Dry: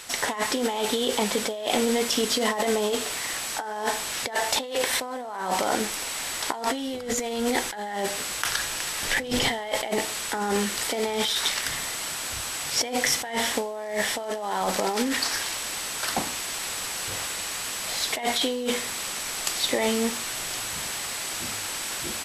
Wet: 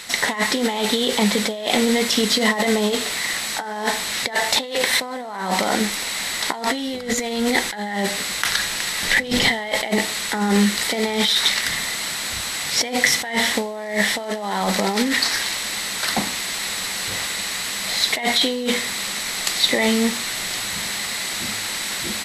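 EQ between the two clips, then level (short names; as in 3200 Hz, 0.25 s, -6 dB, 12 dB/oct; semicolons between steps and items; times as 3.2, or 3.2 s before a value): thirty-one-band EQ 200 Hz +10 dB, 2000 Hz +8 dB, 4000 Hz +8 dB; +3.0 dB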